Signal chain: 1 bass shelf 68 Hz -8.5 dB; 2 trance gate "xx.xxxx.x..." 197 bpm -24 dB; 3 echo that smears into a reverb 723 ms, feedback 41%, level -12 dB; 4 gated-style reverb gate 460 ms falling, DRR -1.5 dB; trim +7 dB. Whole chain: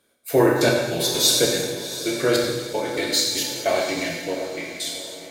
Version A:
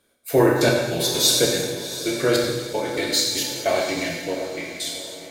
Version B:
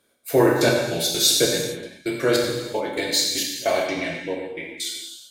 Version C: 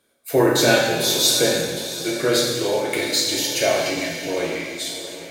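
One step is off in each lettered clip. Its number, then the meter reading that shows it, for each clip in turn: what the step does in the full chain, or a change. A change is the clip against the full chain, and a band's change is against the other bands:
1, 125 Hz band +2.0 dB; 3, momentary loudness spread change +1 LU; 2, 2 kHz band +2.0 dB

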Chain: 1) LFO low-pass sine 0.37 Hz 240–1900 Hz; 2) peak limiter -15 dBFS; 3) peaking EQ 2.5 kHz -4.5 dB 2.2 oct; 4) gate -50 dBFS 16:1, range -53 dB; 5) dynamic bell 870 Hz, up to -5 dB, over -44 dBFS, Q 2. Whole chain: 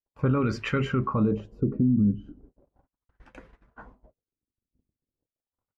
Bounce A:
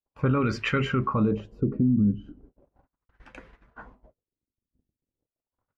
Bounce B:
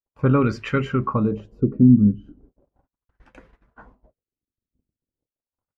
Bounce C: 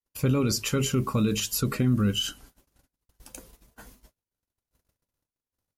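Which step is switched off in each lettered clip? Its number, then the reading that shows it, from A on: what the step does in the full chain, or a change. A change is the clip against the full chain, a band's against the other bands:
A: 3, 2 kHz band +3.5 dB; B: 2, mean gain reduction 2.5 dB; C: 1, momentary loudness spread change -3 LU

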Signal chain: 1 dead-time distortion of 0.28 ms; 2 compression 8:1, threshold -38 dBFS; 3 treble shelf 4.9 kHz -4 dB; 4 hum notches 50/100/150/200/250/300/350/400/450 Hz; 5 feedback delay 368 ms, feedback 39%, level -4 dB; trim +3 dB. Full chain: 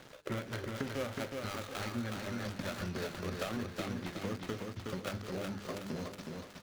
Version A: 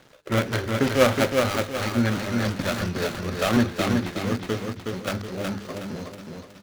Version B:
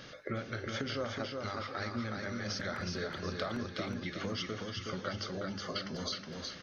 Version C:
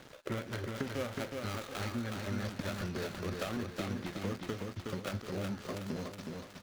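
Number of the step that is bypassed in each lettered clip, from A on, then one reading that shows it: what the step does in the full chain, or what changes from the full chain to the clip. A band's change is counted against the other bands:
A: 2, mean gain reduction 11.0 dB; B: 1, distortion -4 dB; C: 4, 125 Hz band +2.0 dB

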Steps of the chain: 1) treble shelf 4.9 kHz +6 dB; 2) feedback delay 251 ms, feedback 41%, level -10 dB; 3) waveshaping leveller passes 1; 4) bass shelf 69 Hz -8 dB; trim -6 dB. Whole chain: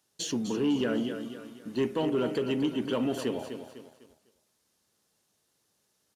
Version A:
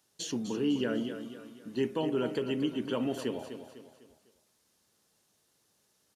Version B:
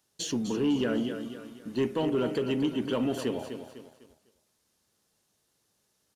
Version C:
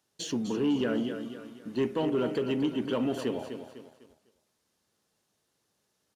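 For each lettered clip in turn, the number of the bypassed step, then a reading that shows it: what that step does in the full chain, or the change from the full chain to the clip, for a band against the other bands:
3, crest factor change +2.5 dB; 4, 125 Hz band +1.5 dB; 1, 8 kHz band -3.5 dB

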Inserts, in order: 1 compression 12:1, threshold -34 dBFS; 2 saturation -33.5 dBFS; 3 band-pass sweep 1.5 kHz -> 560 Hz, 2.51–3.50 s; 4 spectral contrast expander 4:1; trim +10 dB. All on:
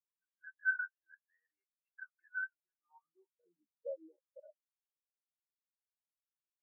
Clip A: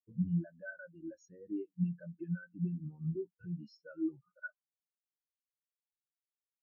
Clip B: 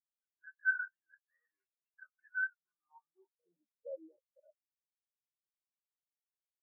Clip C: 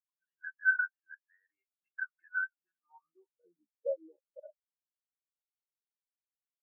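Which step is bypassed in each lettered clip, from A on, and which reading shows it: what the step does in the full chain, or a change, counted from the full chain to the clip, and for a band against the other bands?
3, crest factor change -7.0 dB; 1, mean gain reduction 9.5 dB; 2, distortion -13 dB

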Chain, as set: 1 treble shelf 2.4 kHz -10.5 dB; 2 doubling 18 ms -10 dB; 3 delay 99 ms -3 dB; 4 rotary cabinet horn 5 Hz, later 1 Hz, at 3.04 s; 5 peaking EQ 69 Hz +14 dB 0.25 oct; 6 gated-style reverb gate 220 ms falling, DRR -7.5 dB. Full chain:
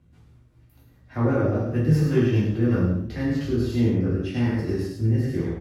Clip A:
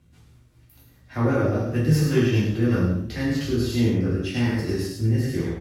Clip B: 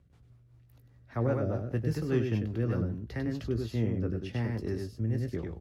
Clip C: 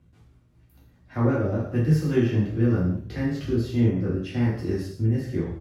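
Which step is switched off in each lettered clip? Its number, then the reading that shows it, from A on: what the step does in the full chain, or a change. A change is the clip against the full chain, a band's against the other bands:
1, 4 kHz band +7.0 dB; 6, 250 Hz band -2.0 dB; 3, loudness change -1.5 LU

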